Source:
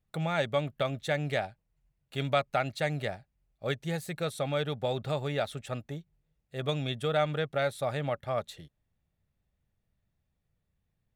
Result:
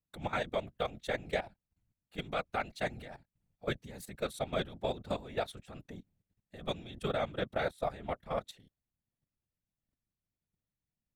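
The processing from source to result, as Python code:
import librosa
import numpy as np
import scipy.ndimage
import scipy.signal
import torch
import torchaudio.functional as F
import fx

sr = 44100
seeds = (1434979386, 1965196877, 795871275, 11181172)

y = fx.level_steps(x, sr, step_db=15)
y = fx.whisperise(y, sr, seeds[0])
y = y * librosa.db_to_amplitude(-1.5)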